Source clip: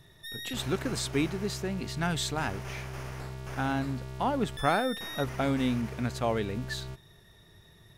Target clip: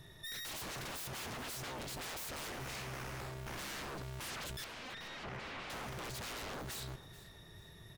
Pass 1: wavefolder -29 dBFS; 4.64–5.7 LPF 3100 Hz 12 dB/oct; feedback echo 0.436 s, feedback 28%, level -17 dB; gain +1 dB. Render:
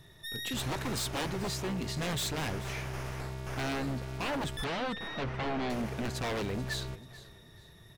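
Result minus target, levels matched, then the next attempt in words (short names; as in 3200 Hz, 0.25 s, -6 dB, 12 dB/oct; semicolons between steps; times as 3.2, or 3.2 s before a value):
wavefolder: distortion -18 dB
wavefolder -40 dBFS; 4.64–5.7 LPF 3100 Hz 12 dB/oct; feedback echo 0.436 s, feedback 28%, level -17 dB; gain +1 dB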